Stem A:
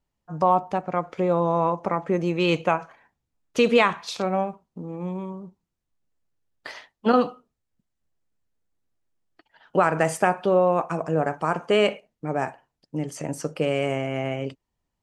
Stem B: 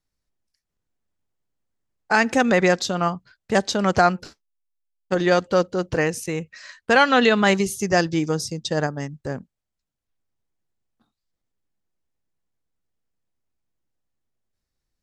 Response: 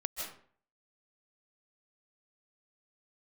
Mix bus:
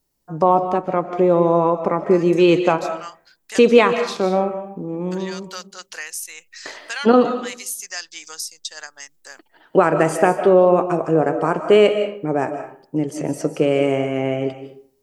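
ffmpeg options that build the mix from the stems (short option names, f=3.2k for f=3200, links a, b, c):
-filter_complex "[0:a]equalizer=f=360:t=o:w=1.2:g=8,volume=-2dB,asplit=3[a][b][c];[b]volume=-4dB[d];[1:a]highpass=1.4k,aemphasis=mode=production:type=75fm,acompressor=threshold=-33dB:ratio=2,volume=0dB[e];[c]apad=whole_len=662634[f];[e][f]sidechaincompress=threshold=-32dB:ratio=8:attack=22:release=277[g];[2:a]atrim=start_sample=2205[h];[d][h]afir=irnorm=-1:irlink=0[i];[a][g][i]amix=inputs=3:normalize=0"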